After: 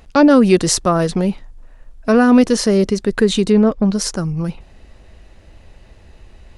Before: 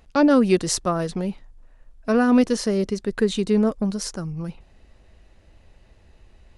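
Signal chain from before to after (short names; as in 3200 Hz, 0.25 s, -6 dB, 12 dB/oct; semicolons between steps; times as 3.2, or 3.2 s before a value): 3.52–3.95 LPF 4200 Hz 12 dB/oct; in parallel at -1 dB: limiter -17.5 dBFS, peak gain reduction 10.5 dB; on the sum: gain +3.5 dB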